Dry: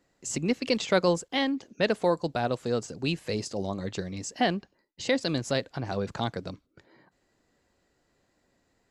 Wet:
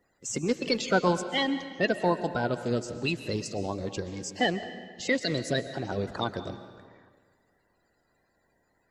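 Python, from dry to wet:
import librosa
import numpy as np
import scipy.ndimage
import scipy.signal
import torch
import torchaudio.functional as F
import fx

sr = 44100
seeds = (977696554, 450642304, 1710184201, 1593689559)

y = fx.spec_quant(x, sr, step_db=30)
y = fx.rev_freeverb(y, sr, rt60_s=1.7, hf_ratio=0.8, predelay_ms=90, drr_db=11.0)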